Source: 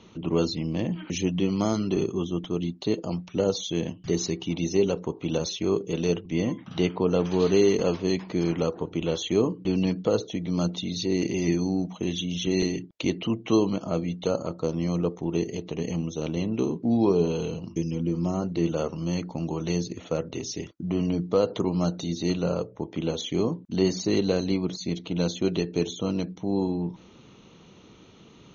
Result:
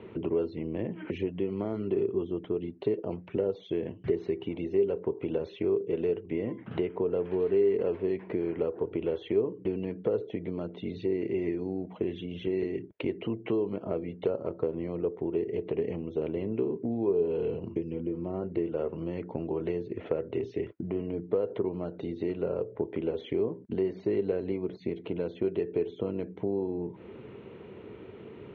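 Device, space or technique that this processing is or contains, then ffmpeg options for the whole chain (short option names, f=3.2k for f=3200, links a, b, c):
bass amplifier: -af "acompressor=threshold=-35dB:ratio=5,highpass=75,equalizer=f=170:t=q:w=4:g=-9,equalizer=f=270:t=q:w=4:g=-4,equalizer=f=410:t=q:w=4:g=8,equalizer=f=810:t=q:w=4:g=-4,equalizer=f=1.2k:t=q:w=4:g=-8,lowpass=f=2.2k:w=0.5412,lowpass=f=2.2k:w=1.3066,volume=6.5dB"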